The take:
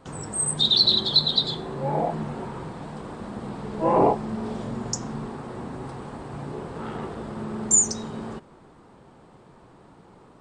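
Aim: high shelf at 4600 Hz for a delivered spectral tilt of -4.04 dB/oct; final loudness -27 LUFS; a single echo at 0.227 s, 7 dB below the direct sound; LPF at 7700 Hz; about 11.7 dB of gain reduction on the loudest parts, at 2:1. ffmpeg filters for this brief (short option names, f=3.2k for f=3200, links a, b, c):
-af "lowpass=7.7k,highshelf=f=4.6k:g=-6,acompressor=threshold=-37dB:ratio=2,aecho=1:1:227:0.447,volume=7.5dB"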